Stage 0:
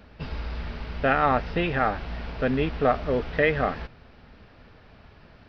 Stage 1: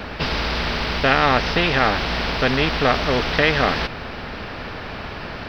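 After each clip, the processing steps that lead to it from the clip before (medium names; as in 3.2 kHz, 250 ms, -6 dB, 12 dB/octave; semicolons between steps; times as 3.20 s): spectrum-flattening compressor 2:1; trim +7 dB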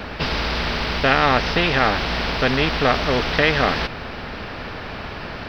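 no audible change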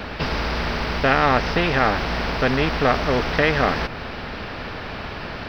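dynamic bell 3.6 kHz, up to -6 dB, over -34 dBFS, Q 1.1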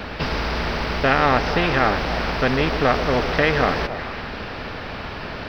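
repeats whose band climbs or falls 140 ms, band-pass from 410 Hz, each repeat 0.7 oct, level -7 dB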